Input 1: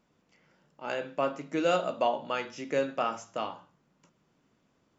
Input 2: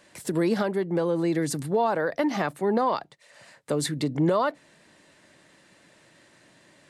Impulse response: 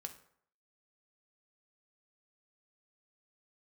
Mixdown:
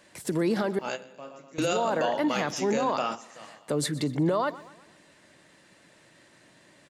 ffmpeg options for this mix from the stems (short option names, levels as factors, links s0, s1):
-filter_complex "[0:a]bass=f=250:g=2,treble=f=4000:g=14,volume=1.26,asplit=3[s0][s1][s2];[s1]volume=0.178[s3];[s2]volume=0.0668[s4];[1:a]volume=0.944,asplit=3[s5][s6][s7];[s5]atrim=end=0.79,asetpts=PTS-STARTPTS,afade=t=out:st=0.786:d=0.004:c=hsin[s8];[s6]atrim=start=0.79:end=1.58,asetpts=PTS-STARTPTS,volume=0[s9];[s7]atrim=start=1.58,asetpts=PTS-STARTPTS,afade=t=in:d=0.004:c=hsin[s10];[s8][s9][s10]concat=n=3:v=0:a=1,asplit=3[s11][s12][s13];[s12]volume=0.112[s14];[s13]apad=whole_len=219679[s15];[s0][s15]sidechaingate=range=0.0224:threshold=0.00447:ratio=16:detection=peak[s16];[2:a]atrim=start_sample=2205[s17];[s3][s17]afir=irnorm=-1:irlink=0[s18];[s4][s14]amix=inputs=2:normalize=0,aecho=0:1:123|246|369|492|615|738:1|0.45|0.202|0.0911|0.041|0.0185[s19];[s16][s11][s18][s19]amix=inputs=4:normalize=0,alimiter=limit=0.133:level=0:latency=1:release=30"